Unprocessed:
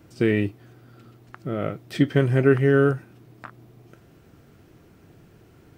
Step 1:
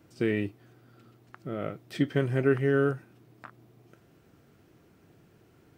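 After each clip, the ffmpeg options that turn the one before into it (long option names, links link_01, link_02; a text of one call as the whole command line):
ffmpeg -i in.wav -af "lowshelf=frequency=70:gain=-9.5,volume=-6dB" out.wav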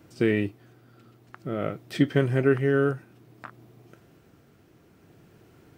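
ffmpeg -i in.wav -af "tremolo=f=0.54:d=0.3,volume=5dB" out.wav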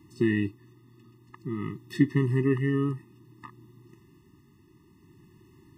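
ffmpeg -i in.wav -af "afftfilt=real='re*eq(mod(floor(b*sr/1024/420),2),0)':imag='im*eq(mod(floor(b*sr/1024/420),2),0)':win_size=1024:overlap=0.75" out.wav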